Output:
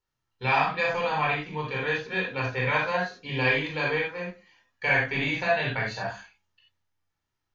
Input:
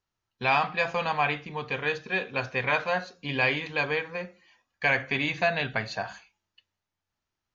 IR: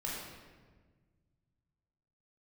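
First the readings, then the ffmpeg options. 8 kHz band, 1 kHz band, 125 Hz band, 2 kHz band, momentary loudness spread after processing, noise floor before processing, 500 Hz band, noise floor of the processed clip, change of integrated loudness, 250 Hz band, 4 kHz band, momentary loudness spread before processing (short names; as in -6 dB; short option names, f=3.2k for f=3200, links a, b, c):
n/a, +1.0 dB, +4.0 dB, +1.0 dB, 8 LU, under -85 dBFS, +1.5 dB, -83 dBFS, +1.0 dB, +1.5 dB, 0.0 dB, 9 LU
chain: -filter_complex "[1:a]atrim=start_sample=2205,atrim=end_sample=4410[a];[0:a][a]afir=irnorm=-1:irlink=0"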